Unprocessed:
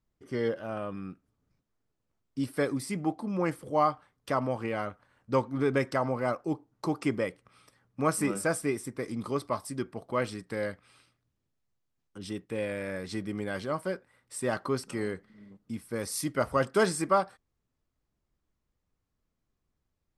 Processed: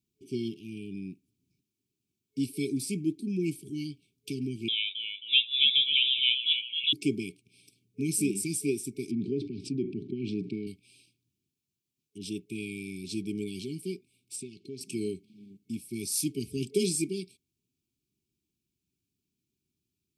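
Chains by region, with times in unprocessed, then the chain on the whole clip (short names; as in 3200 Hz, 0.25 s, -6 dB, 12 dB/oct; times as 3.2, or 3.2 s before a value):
4.68–6.93 frequency-shifting echo 0.267 s, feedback 43%, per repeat +110 Hz, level -6 dB + inverted band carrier 3700 Hz
9.11–10.67 HPF 120 Hz + tape spacing loss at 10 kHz 43 dB + fast leveller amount 70%
14.36–14.81 LPF 6800 Hz + compressor, threshold -38 dBFS + Doppler distortion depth 0.12 ms
whole clip: HPF 120 Hz; FFT band-reject 420–2200 Hz; high shelf 6200 Hz +4.5 dB; gain +1.5 dB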